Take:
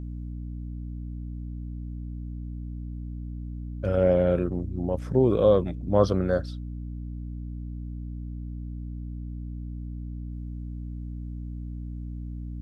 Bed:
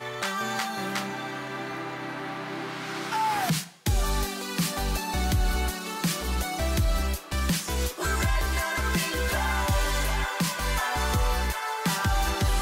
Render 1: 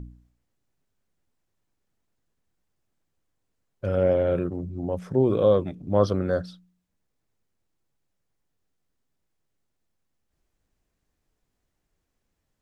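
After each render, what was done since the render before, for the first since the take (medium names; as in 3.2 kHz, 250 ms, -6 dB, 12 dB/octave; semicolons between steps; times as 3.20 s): de-hum 60 Hz, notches 5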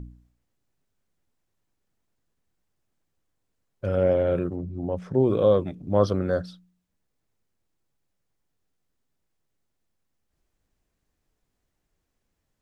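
4.55–5.15 s: distance through air 62 m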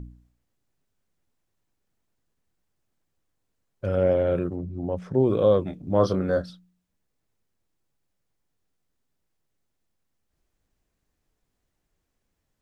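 5.64–6.50 s: doubling 26 ms -8 dB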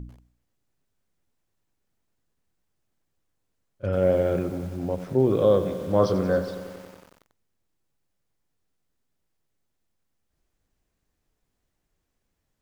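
pre-echo 33 ms -23 dB; bit-crushed delay 92 ms, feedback 80%, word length 7-bit, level -13 dB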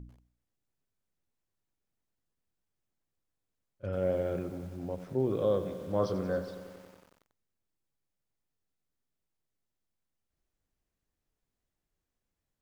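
trim -9 dB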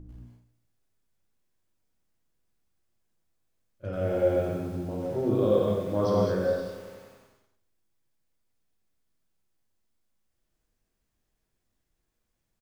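feedback delay 143 ms, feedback 28%, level -15.5 dB; gated-style reverb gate 260 ms flat, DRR -4.5 dB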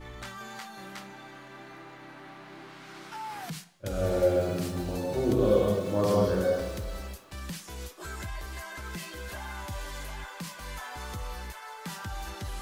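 add bed -12.5 dB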